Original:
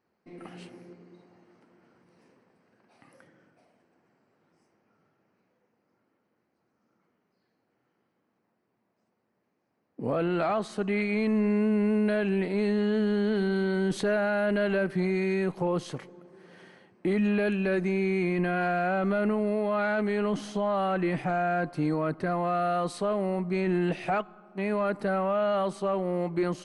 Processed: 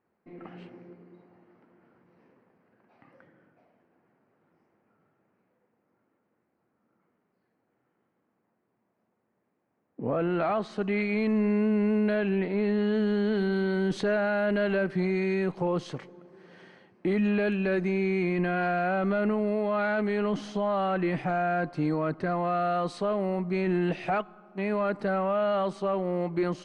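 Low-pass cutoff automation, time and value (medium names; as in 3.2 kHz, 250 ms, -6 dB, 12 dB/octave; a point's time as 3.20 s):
10.20 s 2.3 kHz
10.82 s 5.3 kHz
12.01 s 5.3 kHz
12.62 s 2.8 kHz
12.95 s 5.9 kHz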